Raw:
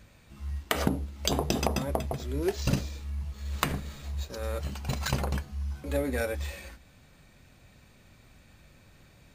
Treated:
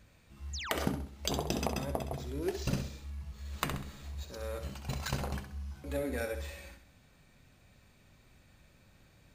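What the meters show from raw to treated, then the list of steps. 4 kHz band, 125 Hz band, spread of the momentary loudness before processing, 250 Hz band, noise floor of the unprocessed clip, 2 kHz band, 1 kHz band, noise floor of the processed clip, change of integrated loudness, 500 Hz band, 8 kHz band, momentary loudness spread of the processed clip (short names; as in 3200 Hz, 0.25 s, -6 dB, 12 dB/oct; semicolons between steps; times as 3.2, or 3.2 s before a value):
-5.0 dB, -6.0 dB, 10 LU, -5.5 dB, -58 dBFS, -5.0 dB, -5.0 dB, -63 dBFS, -5.5 dB, -5.0 dB, -5.0 dB, 11 LU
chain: painted sound fall, 0.53–0.79, 280–7700 Hz -35 dBFS; flutter echo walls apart 11.2 m, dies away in 0.47 s; gain -6 dB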